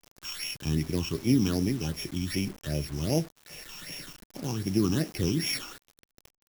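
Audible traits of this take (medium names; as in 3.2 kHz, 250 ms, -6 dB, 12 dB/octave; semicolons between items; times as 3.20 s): a buzz of ramps at a fixed pitch in blocks of 8 samples; phasing stages 8, 2.6 Hz, lowest notch 550–1300 Hz; a quantiser's noise floor 8-bit, dither none; IMA ADPCM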